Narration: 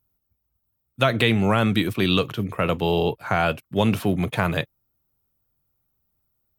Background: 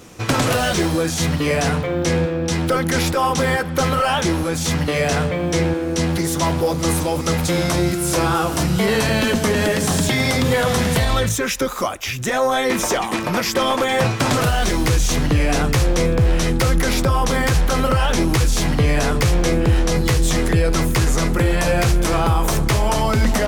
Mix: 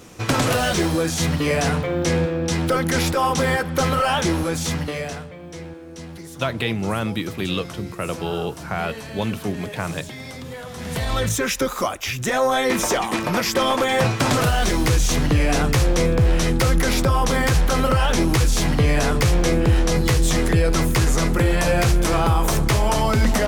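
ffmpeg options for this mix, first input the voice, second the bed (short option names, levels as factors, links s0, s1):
-filter_complex "[0:a]adelay=5400,volume=0.596[s0];[1:a]volume=5.31,afade=t=out:st=4.48:d=0.77:silence=0.16788,afade=t=in:st=10.76:d=0.62:silence=0.158489[s1];[s0][s1]amix=inputs=2:normalize=0"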